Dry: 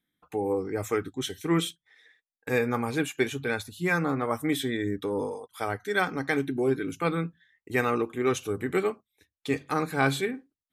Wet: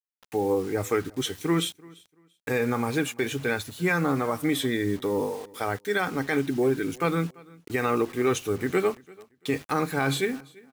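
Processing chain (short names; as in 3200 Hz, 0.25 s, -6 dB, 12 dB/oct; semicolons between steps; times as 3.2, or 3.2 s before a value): limiter -17.5 dBFS, peak gain reduction 6.5 dB; requantised 8-bit, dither none; feedback echo 0.34 s, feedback 22%, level -24 dB; gain +3 dB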